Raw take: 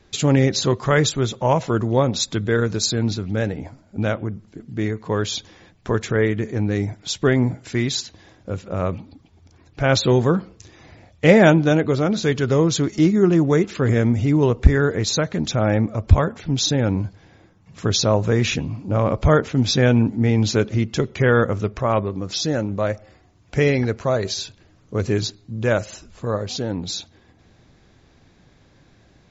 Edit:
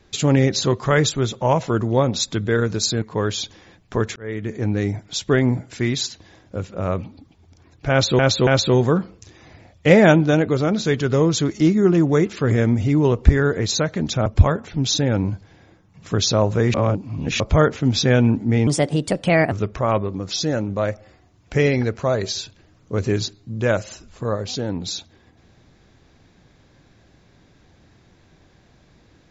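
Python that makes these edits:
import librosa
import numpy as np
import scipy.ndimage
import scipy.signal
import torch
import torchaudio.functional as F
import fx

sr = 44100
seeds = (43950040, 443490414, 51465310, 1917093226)

y = fx.edit(x, sr, fx.cut(start_s=3.02, length_s=1.94),
    fx.fade_in_span(start_s=6.1, length_s=0.44),
    fx.repeat(start_s=9.85, length_s=0.28, count=3),
    fx.cut(start_s=15.64, length_s=0.34),
    fx.reverse_span(start_s=18.46, length_s=0.66),
    fx.speed_span(start_s=20.39, length_s=1.14, speed=1.35), tone=tone)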